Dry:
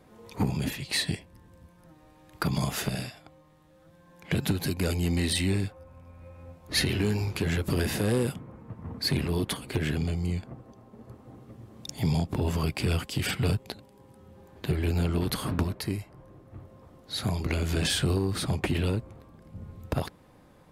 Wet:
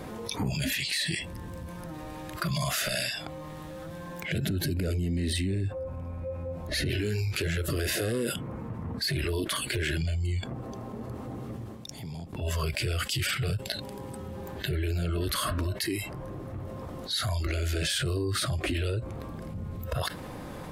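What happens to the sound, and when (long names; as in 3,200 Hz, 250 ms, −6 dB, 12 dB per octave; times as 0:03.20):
0:04.38–0:06.90: tilt shelving filter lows +5 dB, about 1,200 Hz
0:11.54–0:12.56: duck −23.5 dB, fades 0.23 s
whole clip: noise reduction from a noise print of the clip's start 16 dB; brickwall limiter −27 dBFS; envelope flattener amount 70%; level +3 dB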